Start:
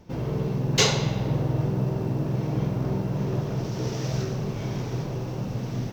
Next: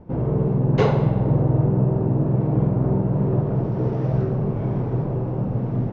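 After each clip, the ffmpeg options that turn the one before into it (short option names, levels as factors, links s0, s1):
-af "lowpass=1000,volume=2.11"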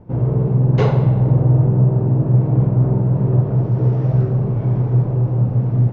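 -af "equalizer=f=120:w=7.3:g=13.5"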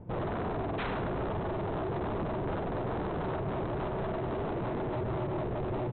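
-filter_complex "[0:a]acompressor=threshold=0.178:ratio=16,aresample=8000,aeval=exprs='0.0596*(abs(mod(val(0)/0.0596+3,4)-2)-1)':c=same,aresample=44100,asplit=2[s0][s1];[s1]adelay=110.8,volume=0.251,highshelf=f=4000:g=-2.49[s2];[s0][s2]amix=inputs=2:normalize=0,volume=0.631"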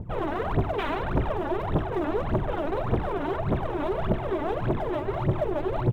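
-af "aphaser=in_gain=1:out_gain=1:delay=3.6:decay=0.79:speed=1.7:type=triangular,volume=1.19"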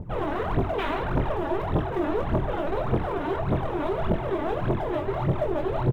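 -filter_complex "[0:a]asplit=2[s0][s1];[s1]adelay=23,volume=0.501[s2];[s0][s2]amix=inputs=2:normalize=0"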